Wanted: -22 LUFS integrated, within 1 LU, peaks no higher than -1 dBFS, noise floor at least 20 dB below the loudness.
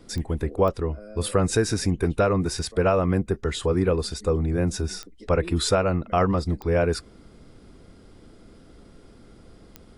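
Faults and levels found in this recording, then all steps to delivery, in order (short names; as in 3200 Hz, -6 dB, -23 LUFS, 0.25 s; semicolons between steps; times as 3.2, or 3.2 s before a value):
clicks 5; loudness -24.5 LUFS; peak -7.5 dBFS; loudness target -22.0 LUFS
-> de-click; gain +2.5 dB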